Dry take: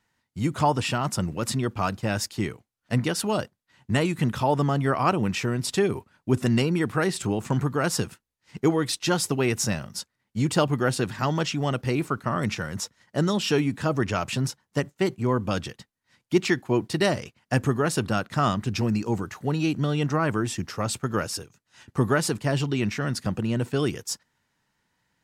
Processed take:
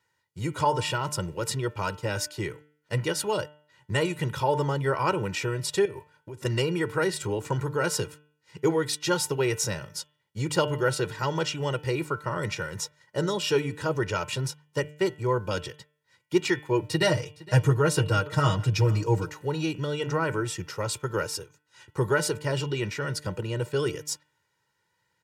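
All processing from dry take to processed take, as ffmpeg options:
-filter_complex "[0:a]asettb=1/sr,asplit=3[a][b][c];[a]atrim=end=5.854[d];[b]atrim=start=5.85:end=6.45,asetpts=PTS-STARTPTS,afade=t=in:d=0.004:c=qsin,afade=t=out:st=0.596:d=0.004:c=qsin,bandreject=f=1.3k:w=20,acompressor=threshold=-31dB:ratio=12:attack=3.2:release=140:knee=1:detection=peak[e];[c]atrim=start=6.446[f];[d][e]acrossfade=d=0.004:c1=hsin:c2=qsin[g];[g][f]acrossfade=d=0.004:c1=qsin:c2=hsin,asettb=1/sr,asplit=3[h][i][j];[h]atrim=end=16.824[k];[i]atrim=start=16.82:end=19.3,asetpts=PTS-STARTPTS,afade=t=in:d=0.004:c=qsin,afade=t=out:st=2.476:d=0.004:c=qsin,equalizer=f=98:w=2.1:g=11,aecho=1:1:6.4:0.72,atrim=end_sample=109368,aecho=1:1:462:0.0944,atrim=end_sample=109368[l];[j]atrim=start=19.296[m];[k][l]acrossfade=d=0.004:c1=hsin:c2=qsin[n];[n][m]acrossfade=d=0.004:c1=qsin:c2=hsin,highpass=96,aecho=1:1:2.1:0.83,bandreject=f=149.5:t=h:w=4,bandreject=f=299:t=h:w=4,bandreject=f=448.5:t=h:w=4,bandreject=f=598:t=h:w=4,bandreject=f=747.5:t=h:w=4,bandreject=f=897:t=h:w=4,bandreject=f=1.0465k:t=h:w=4,bandreject=f=1.196k:t=h:w=4,bandreject=f=1.3455k:t=h:w=4,bandreject=f=1.495k:t=h:w=4,bandreject=f=1.6445k:t=h:w=4,bandreject=f=1.794k:t=h:w=4,bandreject=f=1.9435k:t=h:w=4,bandreject=f=2.093k:t=h:w=4,bandreject=f=2.2425k:t=h:w=4,bandreject=f=2.392k:t=h:w=4,bandreject=f=2.5415k:t=h:w=4,bandreject=f=2.691k:t=h:w=4,bandreject=f=2.8405k:t=h:w=4,bandreject=f=2.99k:t=h:w=4,bandreject=f=3.1395k:t=h:w=4,bandreject=f=3.289k:t=h:w=4,bandreject=f=3.4385k:t=h:w=4,bandreject=f=3.588k:t=h:w=4,volume=-3.5dB"

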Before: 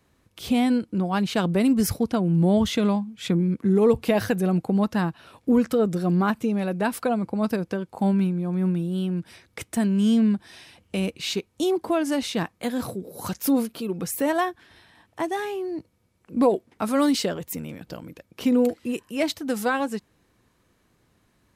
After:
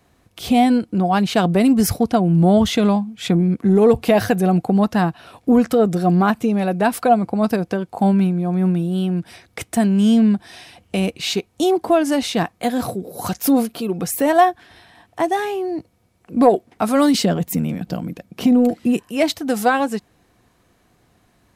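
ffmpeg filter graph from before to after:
-filter_complex "[0:a]asettb=1/sr,asplit=3[a][b][c];[a]atrim=end=17.144[d];[b]atrim=start=17.14:end=19,asetpts=PTS-STARTPTS,afade=t=in:d=0.004:c=qsin,afade=t=out:st=1.856:d=0.004:c=qsin,equalizer=f=190:t=o:w=1:g=11,acompressor=threshold=-18dB:ratio=2.5:attack=3.2:release=140:knee=1:detection=peak[e];[c]atrim=start=18.996[f];[d][e]acrossfade=d=0.004:c1=hsin:c2=qsin[g];[g][f]acrossfade=d=0.004:c1=qsin:c2=hsin,acontrast=47,equalizer=f=720:w=7.7:g=9.5"

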